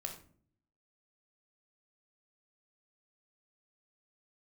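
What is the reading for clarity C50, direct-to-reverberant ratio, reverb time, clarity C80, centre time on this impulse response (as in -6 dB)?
8.0 dB, 3.0 dB, 0.50 s, 12.5 dB, 17 ms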